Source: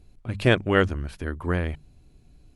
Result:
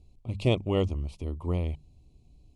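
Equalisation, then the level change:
Butterworth band-reject 1,600 Hz, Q 1.2
low-pass filter 9,800 Hz 24 dB per octave
parametric band 69 Hz +5 dB 1.6 octaves
−5.5 dB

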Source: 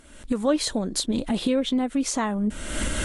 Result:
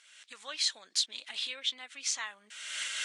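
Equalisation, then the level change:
flat-topped band-pass 3,700 Hz, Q 0.77
0.0 dB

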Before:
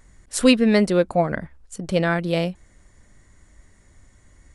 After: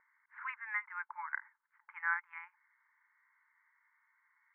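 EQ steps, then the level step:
linear-phase brick-wall high-pass 850 Hz
Chebyshev low-pass with heavy ripple 2,200 Hz, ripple 3 dB
−6.0 dB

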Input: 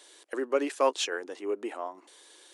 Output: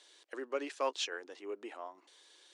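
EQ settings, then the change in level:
resonant band-pass 5,100 Hz, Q 0.92
spectral tilt −4.5 dB per octave
+5.5 dB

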